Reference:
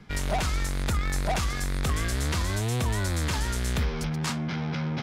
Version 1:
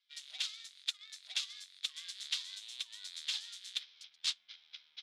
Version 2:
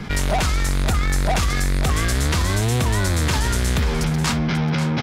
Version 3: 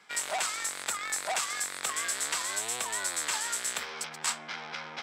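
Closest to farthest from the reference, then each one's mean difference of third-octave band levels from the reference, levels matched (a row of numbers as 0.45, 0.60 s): 2, 3, 1; 1.5, 9.0, 21.5 dB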